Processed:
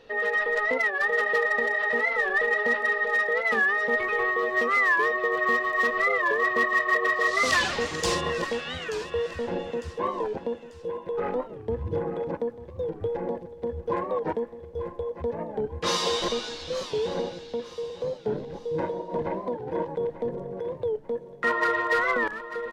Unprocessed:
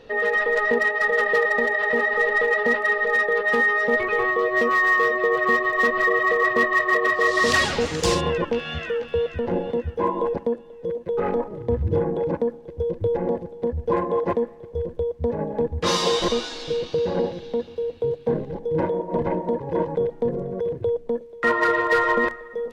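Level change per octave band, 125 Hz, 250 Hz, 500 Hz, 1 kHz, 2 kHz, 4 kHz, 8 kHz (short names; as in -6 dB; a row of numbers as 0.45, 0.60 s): -8.5, -7.0, -5.5, -4.0, -3.0, -3.0, -2.5 dB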